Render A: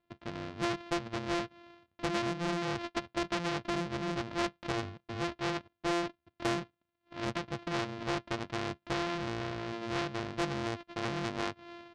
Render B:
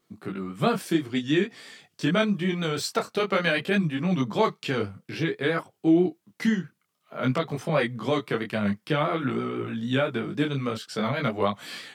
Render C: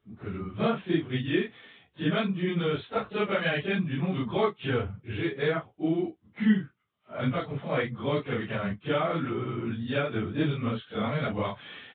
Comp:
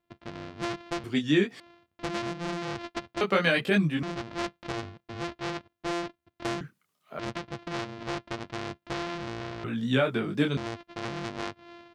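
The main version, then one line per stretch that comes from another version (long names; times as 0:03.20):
A
0:01.04–0:01.60: punch in from B
0:03.21–0:04.03: punch in from B
0:06.61–0:07.19: punch in from B
0:09.64–0:10.57: punch in from B
not used: C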